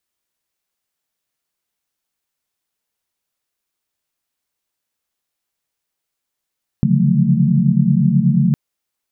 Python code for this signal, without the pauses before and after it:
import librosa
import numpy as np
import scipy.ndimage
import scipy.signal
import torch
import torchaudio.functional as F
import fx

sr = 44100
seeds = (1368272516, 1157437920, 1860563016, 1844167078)

y = fx.chord(sr, length_s=1.71, notes=(49, 50, 53, 54, 57), wave='sine', level_db=-17.5)